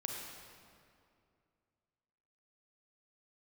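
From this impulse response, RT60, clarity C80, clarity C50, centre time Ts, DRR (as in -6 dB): 2.4 s, 2.0 dB, 0.5 dB, 95 ms, -0.5 dB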